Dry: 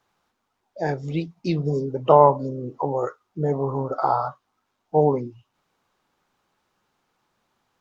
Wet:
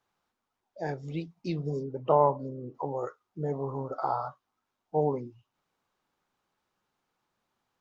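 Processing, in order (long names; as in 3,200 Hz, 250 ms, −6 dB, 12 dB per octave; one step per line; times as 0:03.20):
0:01.83–0:02.75: high-shelf EQ 4,000 Hz −11.5 dB
level −8.5 dB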